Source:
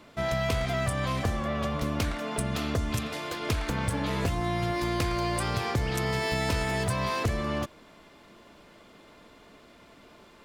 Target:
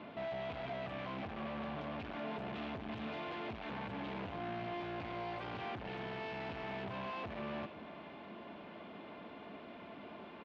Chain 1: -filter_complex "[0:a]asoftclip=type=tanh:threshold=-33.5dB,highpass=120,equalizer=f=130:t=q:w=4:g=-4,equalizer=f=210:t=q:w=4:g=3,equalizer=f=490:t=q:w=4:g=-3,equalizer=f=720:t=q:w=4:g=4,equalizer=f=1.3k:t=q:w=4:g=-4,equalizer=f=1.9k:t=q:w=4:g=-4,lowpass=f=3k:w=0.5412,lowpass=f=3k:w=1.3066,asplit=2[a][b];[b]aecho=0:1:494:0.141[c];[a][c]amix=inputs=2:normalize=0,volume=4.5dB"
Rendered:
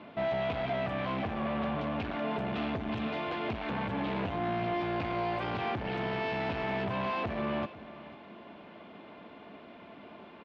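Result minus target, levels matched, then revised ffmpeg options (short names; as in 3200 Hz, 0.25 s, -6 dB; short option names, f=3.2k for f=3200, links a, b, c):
soft clip: distortion -4 dB
-filter_complex "[0:a]asoftclip=type=tanh:threshold=-44.5dB,highpass=120,equalizer=f=130:t=q:w=4:g=-4,equalizer=f=210:t=q:w=4:g=3,equalizer=f=490:t=q:w=4:g=-3,equalizer=f=720:t=q:w=4:g=4,equalizer=f=1.3k:t=q:w=4:g=-4,equalizer=f=1.9k:t=q:w=4:g=-4,lowpass=f=3k:w=0.5412,lowpass=f=3k:w=1.3066,asplit=2[a][b];[b]aecho=0:1:494:0.141[c];[a][c]amix=inputs=2:normalize=0,volume=4.5dB"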